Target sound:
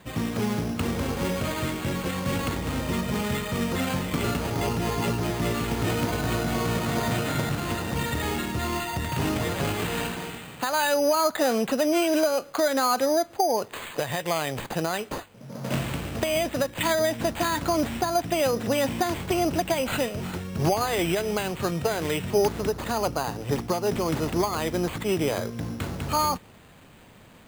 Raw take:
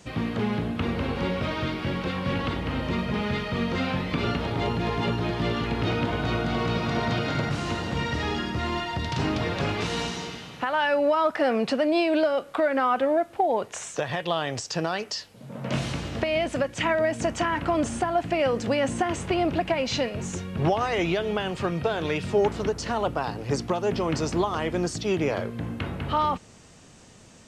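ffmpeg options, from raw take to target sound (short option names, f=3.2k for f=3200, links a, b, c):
-af "acrusher=samples=8:mix=1:aa=0.000001"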